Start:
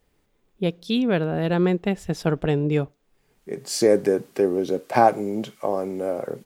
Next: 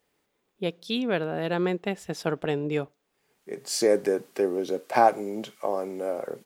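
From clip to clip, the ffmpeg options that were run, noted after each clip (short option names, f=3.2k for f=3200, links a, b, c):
-af "highpass=f=390:p=1,volume=-1.5dB"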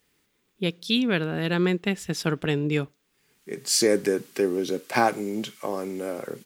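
-af "equalizer=f=670:w=0.93:g=-12.5,volume=7.5dB"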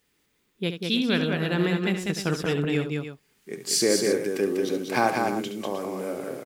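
-af "aecho=1:1:70|195|309:0.335|0.631|0.282,volume=-2dB"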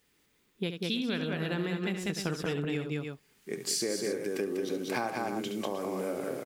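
-af "acompressor=threshold=-29dB:ratio=6"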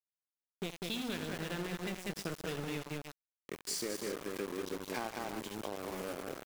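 -af "aeval=exprs='val(0)*gte(abs(val(0)),0.0237)':c=same,volume=-6dB"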